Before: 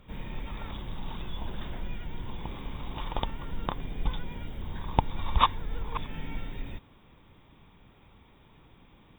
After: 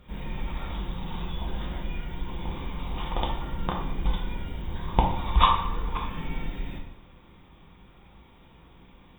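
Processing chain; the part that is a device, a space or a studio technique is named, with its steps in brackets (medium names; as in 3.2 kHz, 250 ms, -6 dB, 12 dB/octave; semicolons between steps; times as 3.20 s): bathroom (reverberation RT60 0.90 s, pre-delay 4 ms, DRR -1 dB)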